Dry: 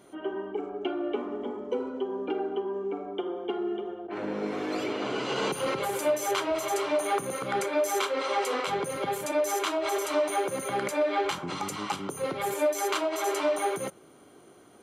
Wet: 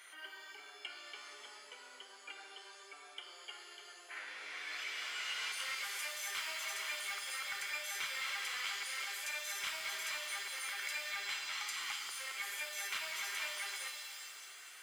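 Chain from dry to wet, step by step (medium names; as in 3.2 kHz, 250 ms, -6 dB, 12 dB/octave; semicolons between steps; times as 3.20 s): compression 2.5:1, threshold -47 dBFS, peak gain reduction 17 dB; resonant high-pass 1.9 kHz, resonance Q 2.7; saturation -35.5 dBFS, distortion -18 dB; pitch-shifted reverb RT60 2 s, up +7 st, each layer -2 dB, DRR 4.5 dB; trim +3.5 dB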